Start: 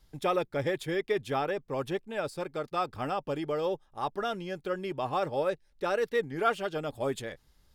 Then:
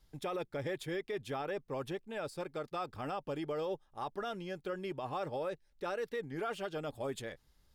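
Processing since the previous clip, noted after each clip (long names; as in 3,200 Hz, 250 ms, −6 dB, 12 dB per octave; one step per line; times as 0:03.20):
brickwall limiter −25 dBFS, peak gain reduction 9.5 dB
level −4.5 dB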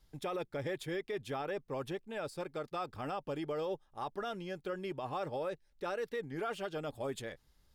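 no processing that can be heard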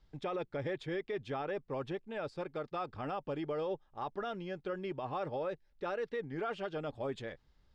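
high-frequency loss of the air 150 metres
level +1 dB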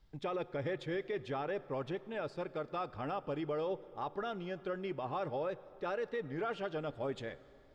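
dense smooth reverb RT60 3.1 s, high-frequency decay 0.75×, DRR 17 dB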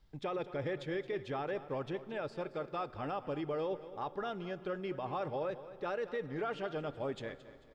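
repeating echo 221 ms, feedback 39%, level −15 dB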